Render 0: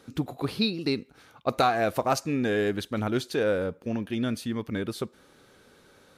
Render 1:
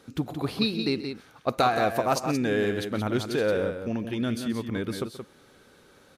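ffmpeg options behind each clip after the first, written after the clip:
-af "aecho=1:1:130|175:0.158|0.422"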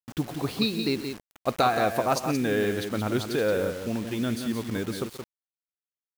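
-af "acrusher=bits=6:mix=0:aa=0.000001"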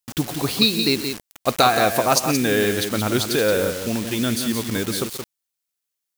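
-af "highshelf=f=2.9k:g=10.5,volume=5dB"

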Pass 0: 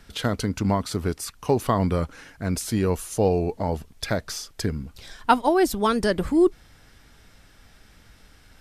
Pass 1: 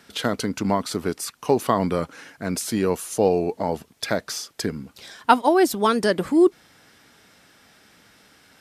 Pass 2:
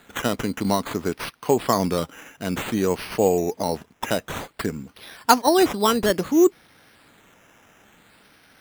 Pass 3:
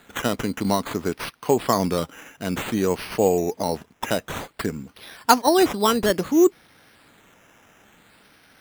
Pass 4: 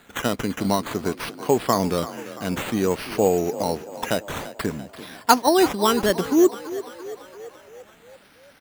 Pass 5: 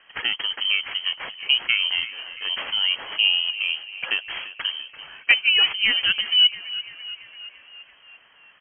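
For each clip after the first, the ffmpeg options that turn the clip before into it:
-af "highpass=190,volume=2.5dB"
-af "acrusher=samples=8:mix=1:aa=0.000001:lfo=1:lforange=4.8:lforate=0.56"
-af anull
-filter_complex "[0:a]asplit=7[a][b][c][d][e][f][g];[b]adelay=339,afreqshift=34,volume=-15dB[h];[c]adelay=678,afreqshift=68,volume=-19.6dB[i];[d]adelay=1017,afreqshift=102,volume=-24.2dB[j];[e]adelay=1356,afreqshift=136,volume=-28.7dB[k];[f]adelay=1695,afreqshift=170,volume=-33.3dB[l];[g]adelay=2034,afreqshift=204,volume=-37.9dB[m];[a][h][i][j][k][l][m]amix=inputs=7:normalize=0"
-af "lowpass=f=2.8k:t=q:w=0.5098,lowpass=f=2.8k:t=q:w=0.6013,lowpass=f=2.8k:t=q:w=0.9,lowpass=f=2.8k:t=q:w=2.563,afreqshift=-3300,volume=-1dB"

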